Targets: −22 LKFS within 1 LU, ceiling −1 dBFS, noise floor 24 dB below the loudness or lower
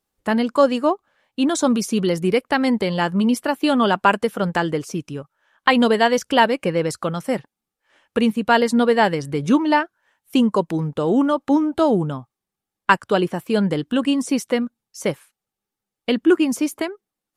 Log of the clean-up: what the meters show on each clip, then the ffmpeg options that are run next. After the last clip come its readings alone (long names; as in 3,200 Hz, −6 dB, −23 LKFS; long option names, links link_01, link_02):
integrated loudness −20.0 LKFS; sample peak −1.5 dBFS; target loudness −22.0 LKFS
→ -af "volume=-2dB"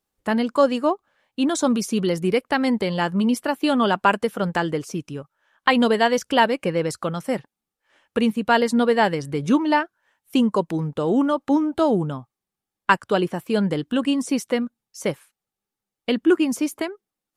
integrated loudness −22.0 LKFS; sample peak −3.5 dBFS; background noise floor −87 dBFS